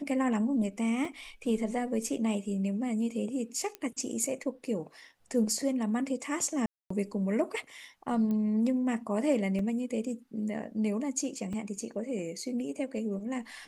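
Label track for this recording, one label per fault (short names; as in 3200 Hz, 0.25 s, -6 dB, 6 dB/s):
1.050000	1.050000	gap 3 ms
3.750000	3.750000	pop -22 dBFS
6.660000	6.900000	gap 0.244 s
8.310000	8.310000	pop -24 dBFS
9.590000	9.590000	gap 2.7 ms
11.530000	11.530000	gap 4.3 ms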